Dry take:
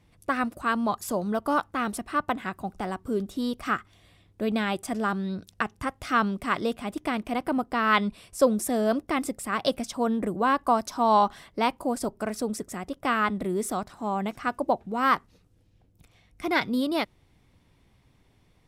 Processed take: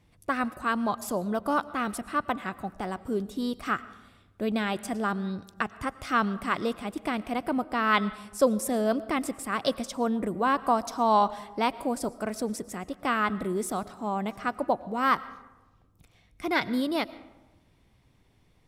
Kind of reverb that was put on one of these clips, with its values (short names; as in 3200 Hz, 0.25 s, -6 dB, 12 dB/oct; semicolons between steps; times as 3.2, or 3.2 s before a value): digital reverb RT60 1.1 s, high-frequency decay 0.5×, pre-delay 70 ms, DRR 17.5 dB; gain -1.5 dB